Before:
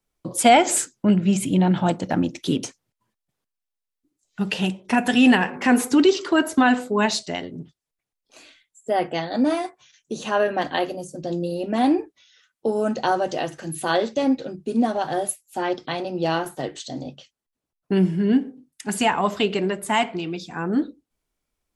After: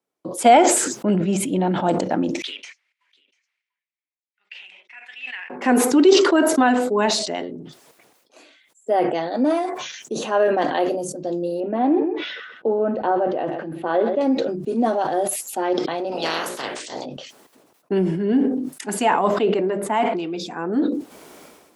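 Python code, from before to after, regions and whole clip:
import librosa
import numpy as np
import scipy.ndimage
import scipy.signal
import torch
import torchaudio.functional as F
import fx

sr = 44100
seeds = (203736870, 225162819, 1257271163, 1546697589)

y = fx.chain(x, sr, fx.ladder_bandpass(hz=2400.0, resonance_pct=65),
    fx.echo_single(ms=692, db=-7.5),
    fx.upward_expand(threshold_db=-52.0, expansion=1.5), at=(2.42, 5.5))
y = fx.chain(y, sr, fx.air_absorb(metres=440.0),
    fx.echo_single(ms=128, db=-16.0), at=(11.6, 14.21))
y = fx.spec_clip(y, sr, under_db=28, at=(16.11, 17.04), fade=0.02)
y = fx.hum_notches(y, sr, base_hz=60, count=10, at=(16.11, 17.04), fade=0.02)
y = fx.chain(y, sr, fx.high_shelf(hz=3000.0, db=-10.5),
    fx.hum_notches(base_hz=50, count=4), at=(19.28, 20.06))
y = scipy.signal.sosfilt(scipy.signal.butter(2, 340.0, 'highpass', fs=sr, output='sos'), y)
y = fx.tilt_shelf(y, sr, db=6.0, hz=1100.0)
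y = fx.sustainer(y, sr, db_per_s=43.0)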